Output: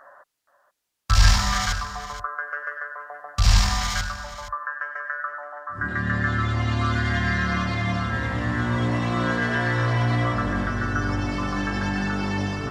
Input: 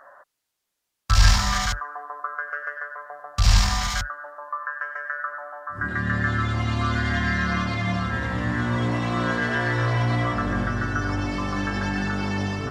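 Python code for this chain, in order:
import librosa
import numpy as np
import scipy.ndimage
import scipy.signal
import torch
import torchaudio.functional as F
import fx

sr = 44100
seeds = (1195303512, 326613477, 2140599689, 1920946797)

y = fx.lowpass(x, sr, hz=9300.0, slope=12, at=(4.73, 6.81))
y = y + 10.0 ** (-13.5 / 20.0) * np.pad(y, (int(473 * sr / 1000.0), 0))[:len(y)]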